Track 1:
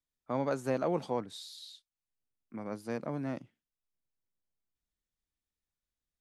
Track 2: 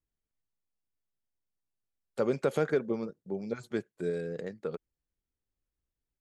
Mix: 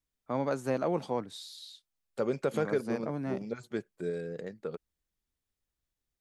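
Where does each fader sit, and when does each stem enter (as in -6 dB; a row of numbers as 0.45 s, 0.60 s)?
+1.0 dB, -2.0 dB; 0.00 s, 0.00 s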